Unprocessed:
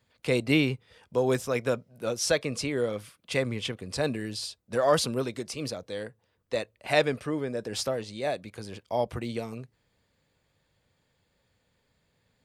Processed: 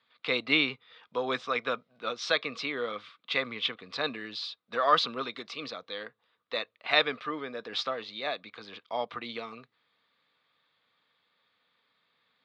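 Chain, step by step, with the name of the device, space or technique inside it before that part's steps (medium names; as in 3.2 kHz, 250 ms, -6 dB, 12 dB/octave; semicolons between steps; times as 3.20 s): phone earpiece (cabinet simulation 360–4200 Hz, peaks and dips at 370 Hz -8 dB, 570 Hz -7 dB, 850 Hz -3 dB, 1.2 kHz +10 dB, 2.2 kHz +3 dB, 3.7 kHz +9 dB)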